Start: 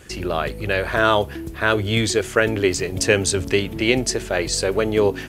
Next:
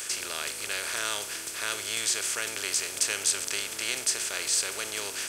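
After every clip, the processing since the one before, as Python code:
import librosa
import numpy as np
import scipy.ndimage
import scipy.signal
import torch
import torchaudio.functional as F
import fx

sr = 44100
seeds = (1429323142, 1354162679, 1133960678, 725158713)

y = fx.bin_compress(x, sr, power=0.4)
y = scipy.signal.lfilter([1.0, -0.97], [1.0], y)
y = F.gain(torch.from_numpy(y), -5.0).numpy()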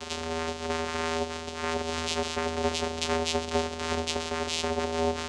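y = x + 0.65 * np.pad(x, (int(7.3 * sr / 1000.0), 0))[:len(x)]
y = fx.small_body(y, sr, hz=(210.0, 390.0, 880.0), ring_ms=40, db=10)
y = fx.vocoder(y, sr, bands=4, carrier='square', carrier_hz=81.4)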